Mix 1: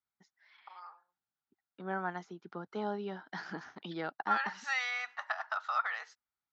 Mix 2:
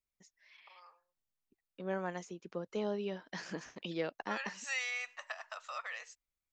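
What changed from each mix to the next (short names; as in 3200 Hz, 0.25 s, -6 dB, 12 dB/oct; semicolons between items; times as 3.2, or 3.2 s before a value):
first voice -4.5 dB; master: remove speaker cabinet 110–4700 Hz, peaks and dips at 530 Hz -10 dB, 810 Hz +9 dB, 1400 Hz +10 dB, 2600 Hz -9 dB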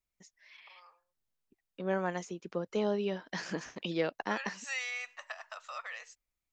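second voice +5.0 dB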